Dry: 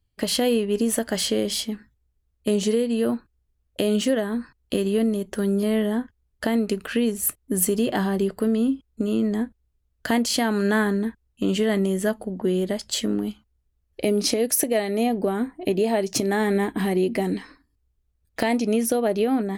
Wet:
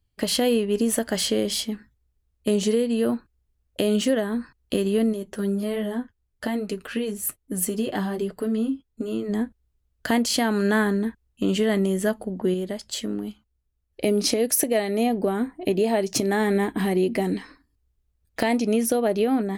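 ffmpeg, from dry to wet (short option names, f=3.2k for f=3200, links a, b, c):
-filter_complex "[0:a]asplit=3[a][b][c];[a]afade=t=out:st=5.12:d=0.02[d];[b]flanger=delay=5.9:depth=4.9:regen=-29:speed=1.2:shape=triangular,afade=t=in:st=5.12:d=0.02,afade=t=out:st=9.28:d=0.02[e];[c]afade=t=in:st=9.28:d=0.02[f];[d][e][f]amix=inputs=3:normalize=0,asplit=3[g][h][i];[g]atrim=end=12.542[j];[h]atrim=start=12.538:end=14.022,asetpts=PTS-STARTPTS,volume=-4.5dB[k];[i]atrim=start=14.018[l];[j][k]acrossfade=d=0.004:c1=hsin:c2=hsin[m];[m][l]acrossfade=d=0.004:c1=hsin:c2=hsin"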